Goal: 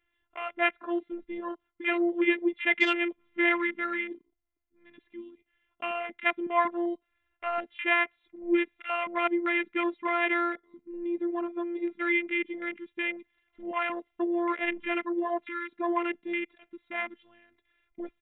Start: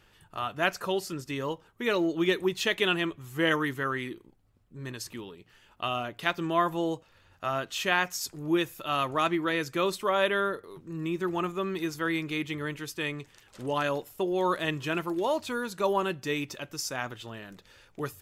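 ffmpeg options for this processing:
-af "aresample=8000,aresample=44100,afftfilt=real='hypot(re,im)*cos(PI*b)':imag='0':win_size=512:overlap=0.75,afwtdn=0.0141,equalizer=f=2.1k:w=5:g=12,volume=1.5dB"

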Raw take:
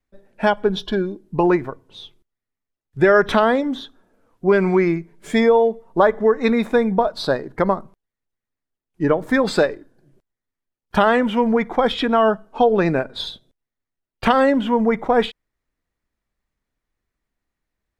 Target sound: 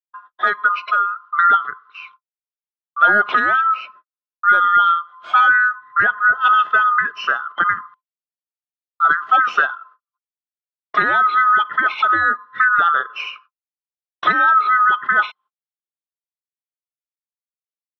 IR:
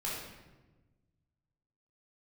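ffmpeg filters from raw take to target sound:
-filter_complex "[0:a]afftfilt=real='real(if(lt(b,960),b+48*(1-2*mod(floor(b/48),2)),b),0)':imag='imag(if(lt(b,960),b+48*(1-2*mod(floor(b/48),2)),b),0)':win_size=2048:overlap=0.75,agate=range=-56dB:threshold=-47dB:ratio=16:detection=peak,asplit=2[a][b];[b]acompressor=threshold=-29dB:ratio=6,volume=0dB[c];[a][c]amix=inputs=2:normalize=0,highpass=250,equalizer=f=280:t=q:w=4:g=-6,equalizer=f=520:t=q:w=4:g=-4,equalizer=f=830:t=q:w=4:g=3,equalizer=f=1.3k:t=q:w=4:g=8,equalizer=f=1.9k:t=q:w=4:g=-4,equalizer=f=2.9k:t=q:w=4:g=4,lowpass=f=4k:w=0.5412,lowpass=f=4k:w=1.3066,volume=-4dB"

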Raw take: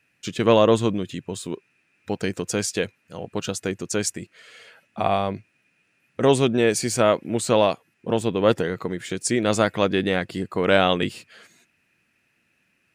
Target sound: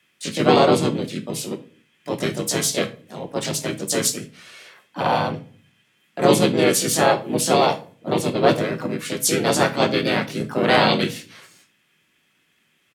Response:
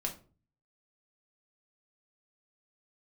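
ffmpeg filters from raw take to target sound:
-filter_complex "[0:a]asplit=4[a][b][c][d];[b]asetrate=29433,aresample=44100,atempo=1.49831,volume=-5dB[e];[c]asetrate=35002,aresample=44100,atempo=1.25992,volume=-4dB[f];[d]asetrate=55563,aresample=44100,atempo=0.793701,volume=-1dB[g];[a][e][f][g]amix=inputs=4:normalize=0,afreqshift=30,asplit=2[h][i];[1:a]atrim=start_sample=2205,asetrate=37044,aresample=44100,highshelf=f=2.7k:g=11.5[j];[i][j]afir=irnorm=-1:irlink=0,volume=-6dB[k];[h][k]amix=inputs=2:normalize=0,volume=-6.5dB"

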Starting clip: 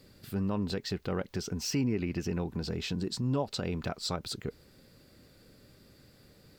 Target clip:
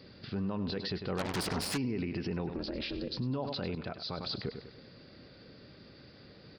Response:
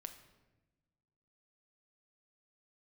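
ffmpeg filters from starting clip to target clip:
-filter_complex "[0:a]asplit=3[a][b][c];[a]afade=t=out:st=2.51:d=0.02[d];[b]aeval=exprs='val(0)*sin(2*PI*140*n/s)':c=same,afade=t=in:st=2.51:d=0.02,afade=t=out:st=3.16:d=0.02[e];[c]afade=t=in:st=3.16:d=0.02[f];[d][e][f]amix=inputs=3:normalize=0,aecho=1:1:99|198|297|396|495:0.2|0.0958|0.046|0.0221|0.0106,alimiter=level_in=7.5dB:limit=-24dB:level=0:latency=1:release=40,volume=-7.5dB,aresample=11025,aresample=44100,asplit=3[g][h][i];[g]afade=t=out:st=1.17:d=0.02[j];[h]aeval=exprs='0.0282*(cos(1*acos(clip(val(0)/0.0282,-1,1)))-cos(1*PI/2))+0.0112*(cos(8*acos(clip(val(0)/0.0282,-1,1)))-cos(8*PI/2))':c=same,afade=t=in:st=1.17:d=0.02,afade=t=out:st=1.76:d=0.02[k];[i]afade=t=in:st=1.76:d=0.02[l];[j][k][l]amix=inputs=3:normalize=0,highpass=f=100:p=1,asettb=1/sr,asplit=3[m][n][o];[m]atrim=end=3.754[p];[n]atrim=start=3.75:end=4.21,asetpts=PTS-STARTPTS,afade=t=in:d=0.004:c=qsin,afade=t=out:st=0.456:d=0.004:c=qsin,agate=range=-33dB:threshold=-38dB:ratio=3:detection=peak[q];[o]atrim=start=4.206[r];[p][q]acrossfade=d=0.004:c1=hsin:c2=qsin[s];[s][r]acrossfade=d=0.004:c1=qsin:c2=hsin,volume=5.5dB"

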